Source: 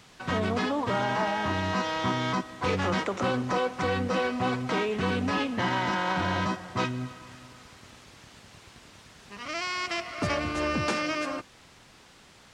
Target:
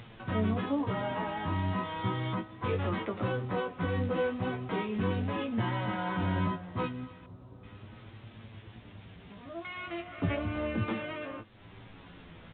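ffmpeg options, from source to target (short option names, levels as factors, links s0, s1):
-filter_complex "[0:a]lowshelf=f=400:g=11,acompressor=mode=upward:threshold=0.0282:ratio=2.5,flanger=delay=8.5:depth=3.6:regen=10:speed=0.36:shape=triangular,acrusher=bits=6:mode=log:mix=0:aa=0.000001,asplit=2[s0][s1];[s1]adelay=18,volume=0.501[s2];[s0][s2]amix=inputs=2:normalize=0,asettb=1/sr,asplit=3[s3][s4][s5];[s3]atrim=end=7.264[s6];[s4]atrim=start=7.26:end=9.65,asetpts=PTS-STARTPTS,afade=t=in:d=0.004:c=qsin,afade=t=out:st=2.386:d=0.004:c=qsin,acrossover=split=1100[s7][s8];[s8]adelay=370[s9];[s7][s9]amix=inputs=2:normalize=0,atrim=end_sample=105399[s10];[s5]atrim=start=9.646[s11];[s6][s10]acrossfade=d=0.004:c1=hsin:c2=qsin[s12];[s12][s11]acrossfade=d=0.004:c1=qsin:c2=hsin,volume=0.447" -ar 8000 -c:a pcm_alaw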